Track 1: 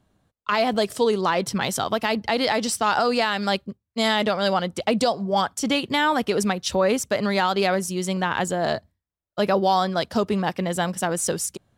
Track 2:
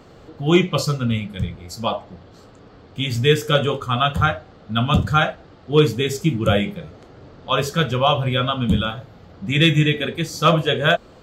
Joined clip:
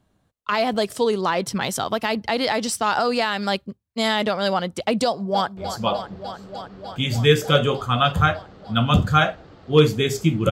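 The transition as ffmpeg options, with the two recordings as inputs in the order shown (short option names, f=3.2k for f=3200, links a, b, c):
-filter_complex "[0:a]apad=whole_dur=10.51,atrim=end=10.51,atrim=end=5.572[a];[1:a]atrim=start=1.568:end=6.51[b];[a][b]acrossfade=d=0.004:c1=hsin:c2=hsin,asplit=2[c][d];[d]afade=t=in:st=5.04:d=0.01,afade=t=out:st=5.57:d=0.01,aecho=0:1:300|600|900|1200|1500|1800|2100|2400|2700|3000|3300|3600:0.298538|0.253758|0.215694|0.18334|0.155839|0.132463|0.112594|0.0957045|0.0813488|0.0691465|0.0587745|0.0499584[e];[c][e]amix=inputs=2:normalize=0"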